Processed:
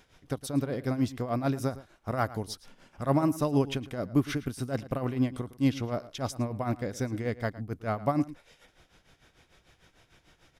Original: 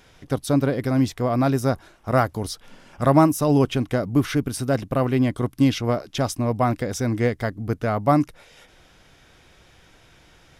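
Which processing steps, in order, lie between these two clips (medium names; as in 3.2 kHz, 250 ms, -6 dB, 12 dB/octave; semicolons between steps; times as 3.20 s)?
tremolo 6.7 Hz, depth 75%; echo from a far wall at 19 m, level -17 dB; trim -5 dB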